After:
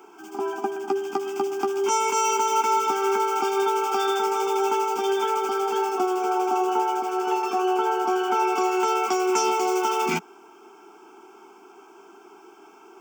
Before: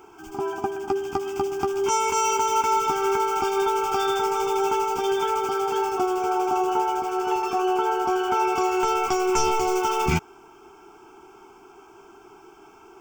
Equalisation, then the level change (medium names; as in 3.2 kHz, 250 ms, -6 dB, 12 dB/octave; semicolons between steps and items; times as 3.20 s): steep high-pass 190 Hz 48 dB/octave; 0.0 dB